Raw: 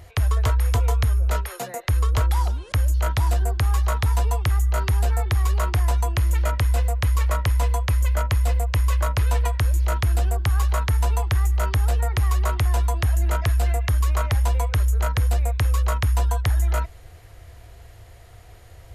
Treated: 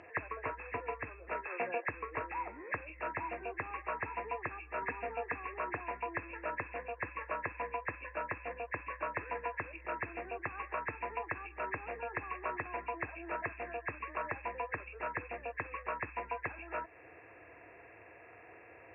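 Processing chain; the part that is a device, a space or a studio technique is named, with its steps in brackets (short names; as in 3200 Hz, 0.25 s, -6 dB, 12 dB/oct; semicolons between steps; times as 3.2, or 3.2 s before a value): 4.82–5.36 comb 4.2 ms, depth 81%; hearing aid with frequency lowering (nonlinear frequency compression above 1600 Hz 4:1; compressor 2.5:1, threshold -28 dBFS, peak gain reduction 9 dB; speaker cabinet 280–6900 Hz, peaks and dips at 310 Hz +8 dB, 460 Hz +4 dB, 1000 Hz +4 dB, 2600 Hz -5 dB); gain -4 dB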